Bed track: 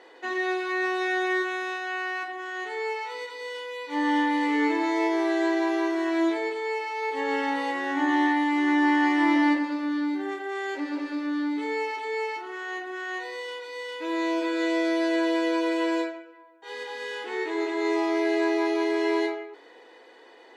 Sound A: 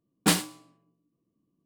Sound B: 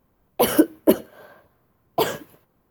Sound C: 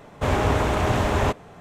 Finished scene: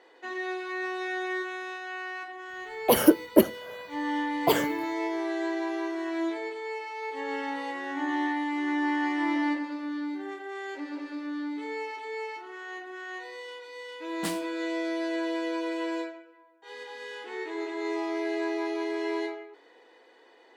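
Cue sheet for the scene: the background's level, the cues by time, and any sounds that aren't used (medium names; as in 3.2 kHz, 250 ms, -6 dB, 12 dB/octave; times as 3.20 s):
bed track -6 dB
2.49 s: add B -2 dB
13.97 s: add A -12.5 dB
not used: C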